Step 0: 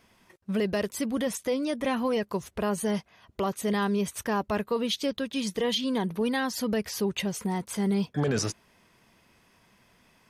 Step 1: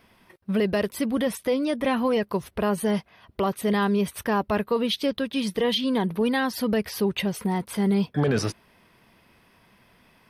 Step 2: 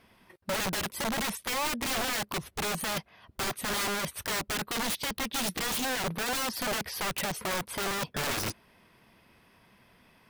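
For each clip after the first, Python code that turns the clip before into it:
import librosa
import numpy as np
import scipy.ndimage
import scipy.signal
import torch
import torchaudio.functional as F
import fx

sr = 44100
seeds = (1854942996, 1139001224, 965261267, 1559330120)

y1 = fx.peak_eq(x, sr, hz=6900.0, db=-13.5, octaves=0.51)
y1 = y1 * 10.0 ** (4.0 / 20.0)
y2 = fx.cheby_harmonics(y1, sr, harmonics=(3, 5), levels_db=(-25, -33), full_scale_db=-13.5)
y2 = (np.mod(10.0 ** (24.0 / 20.0) * y2 + 1.0, 2.0) - 1.0) / 10.0 ** (24.0 / 20.0)
y2 = y2 * 10.0 ** (-2.0 / 20.0)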